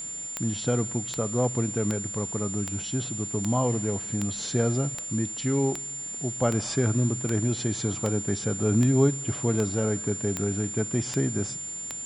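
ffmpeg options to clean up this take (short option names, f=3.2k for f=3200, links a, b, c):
-af "adeclick=t=4,bandreject=f=7.2k:w=30,afwtdn=0.0028"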